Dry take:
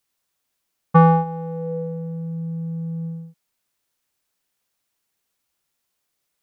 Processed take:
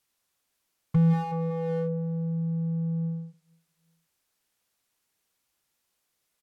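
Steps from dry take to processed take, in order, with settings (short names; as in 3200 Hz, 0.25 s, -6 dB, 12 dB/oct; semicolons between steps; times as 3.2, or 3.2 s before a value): feedback echo 0.185 s, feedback 51%, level -19 dB; treble ducked by the level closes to 2400 Hz, closed at -23.5 dBFS; slew limiter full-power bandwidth 20 Hz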